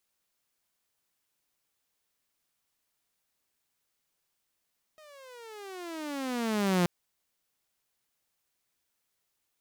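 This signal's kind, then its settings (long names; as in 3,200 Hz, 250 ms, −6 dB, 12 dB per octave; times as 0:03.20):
pitch glide with a swell saw, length 1.88 s, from 630 Hz, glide −22.5 semitones, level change +29.5 dB, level −19.5 dB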